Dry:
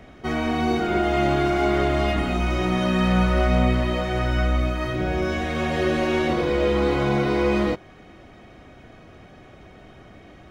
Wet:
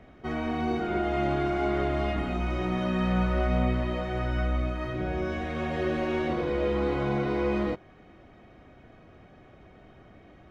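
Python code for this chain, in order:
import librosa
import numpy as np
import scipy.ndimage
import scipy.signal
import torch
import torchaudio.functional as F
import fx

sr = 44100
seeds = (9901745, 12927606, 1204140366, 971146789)

y = fx.high_shelf(x, sr, hz=4400.0, db=-12.0)
y = y * 10.0 ** (-6.0 / 20.0)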